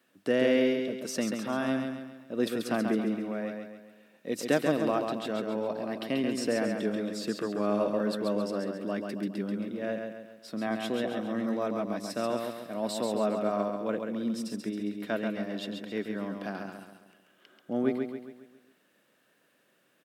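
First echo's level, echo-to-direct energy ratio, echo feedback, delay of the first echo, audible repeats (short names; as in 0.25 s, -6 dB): -5.0 dB, -4.0 dB, 46%, 0.136 s, 5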